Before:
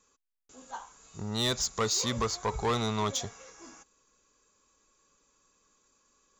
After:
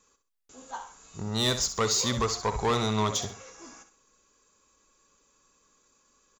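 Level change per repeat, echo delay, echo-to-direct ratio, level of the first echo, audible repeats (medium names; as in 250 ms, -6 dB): -9.5 dB, 65 ms, -10.0 dB, -10.5 dB, 2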